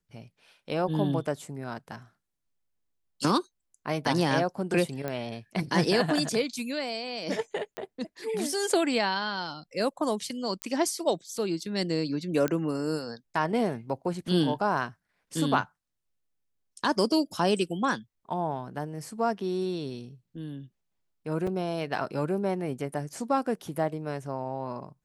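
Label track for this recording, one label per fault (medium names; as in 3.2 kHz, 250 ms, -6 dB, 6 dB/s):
5.080000	5.080000	pop -19 dBFS
7.770000	7.770000	pop -20 dBFS
10.620000	10.620000	pop -15 dBFS
12.480000	12.480000	pop -14 dBFS
21.470000	21.470000	dropout 4.6 ms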